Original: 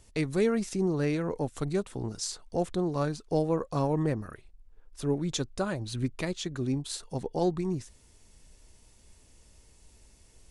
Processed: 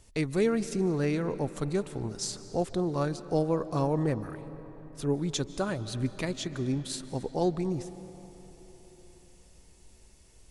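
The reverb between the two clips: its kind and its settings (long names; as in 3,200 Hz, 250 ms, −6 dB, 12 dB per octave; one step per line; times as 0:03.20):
comb and all-pass reverb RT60 4.2 s, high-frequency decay 0.6×, pre-delay 110 ms, DRR 13.5 dB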